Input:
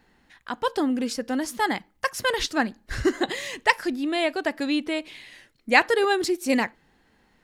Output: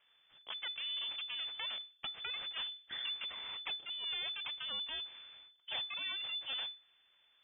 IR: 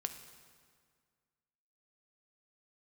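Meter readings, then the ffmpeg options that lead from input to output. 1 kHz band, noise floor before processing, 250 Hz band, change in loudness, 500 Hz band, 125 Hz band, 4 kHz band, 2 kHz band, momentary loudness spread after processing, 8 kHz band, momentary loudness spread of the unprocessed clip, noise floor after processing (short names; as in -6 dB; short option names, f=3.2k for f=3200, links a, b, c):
-26.0 dB, -64 dBFS, under -40 dB, -14.0 dB, -34.5 dB, under -25 dB, -3.0 dB, -19.5 dB, 7 LU, under -40 dB, 10 LU, -71 dBFS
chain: -af "acompressor=threshold=-29dB:ratio=6,aeval=exprs='abs(val(0))':c=same,lowpass=f=3k:t=q:w=0.5098,lowpass=f=3k:t=q:w=0.6013,lowpass=f=3k:t=q:w=0.9,lowpass=f=3k:t=q:w=2.563,afreqshift=-3500,volume=-8dB"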